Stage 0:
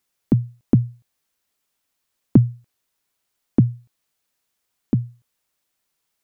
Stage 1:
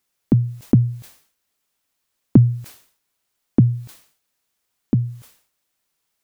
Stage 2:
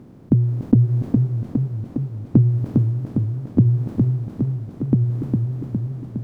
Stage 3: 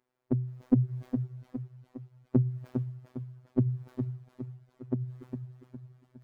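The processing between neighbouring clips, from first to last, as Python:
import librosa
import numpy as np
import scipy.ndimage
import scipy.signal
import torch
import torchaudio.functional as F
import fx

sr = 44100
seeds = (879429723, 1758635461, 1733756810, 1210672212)

y1 = fx.sustainer(x, sr, db_per_s=110.0)
y1 = y1 * 10.0 ** (1.0 / 20.0)
y2 = fx.bin_compress(y1, sr, power=0.4)
y2 = fx.lowpass(y2, sr, hz=1100.0, slope=6)
y2 = fx.echo_warbled(y2, sr, ms=408, feedback_pct=66, rate_hz=2.8, cents=102, wet_db=-3.5)
y2 = y2 * 10.0 ** (-4.0 / 20.0)
y3 = fx.bin_expand(y2, sr, power=2.0)
y3 = fx.bass_treble(y3, sr, bass_db=-10, treble_db=-3)
y3 = fx.robotise(y3, sr, hz=126.0)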